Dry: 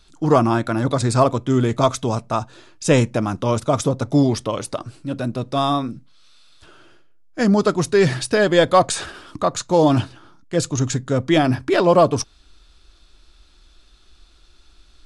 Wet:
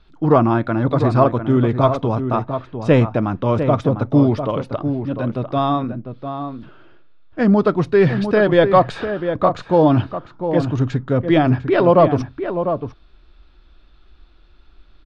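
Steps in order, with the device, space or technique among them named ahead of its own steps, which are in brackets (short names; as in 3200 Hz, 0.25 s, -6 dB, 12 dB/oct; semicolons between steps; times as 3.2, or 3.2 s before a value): shout across a valley (air absorption 360 m; outdoor echo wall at 120 m, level -8 dB); gain +2.5 dB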